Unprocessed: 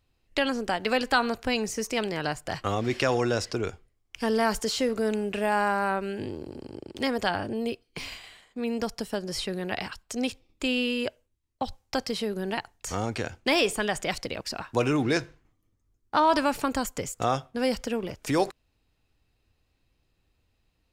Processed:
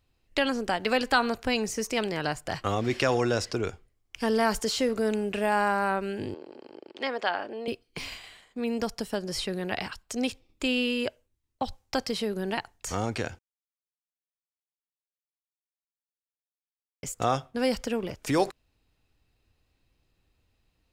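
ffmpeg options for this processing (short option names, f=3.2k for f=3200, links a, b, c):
-filter_complex "[0:a]asettb=1/sr,asplit=3[a][b][c];[a]atrim=end=6.344[d];[b]atrim=start=6.34:end=7.68,asetpts=PTS-STARTPTS,afade=t=in:d=0.004:c=qsin,afade=t=out:st=1.336:d=0.004:c=qsin,highpass=460,lowpass=3.7k[e];[c]atrim=start=7.676[f];[d][e]acrossfade=d=0.004:c1=hsin:c2=qsin[g];[g][f]acrossfade=d=0.004:c1=qsin:c2=hsin,asplit=3[h][i][j];[h]atrim=end=13.39,asetpts=PTS-STARTPTS,afade=t=out:st=13.386:d=0.004:c=hsin[k];[i]atrim=start=13.39:end=17.03,asetpts=PTS-STARTPTS,volume=0[l];[j]atrim=start=17.03,asetpts=PTS-STARTPTS,afade=t=in:d=0.004:c=hsin[m];[k][l][m]concat=n=3:v=0:a=1"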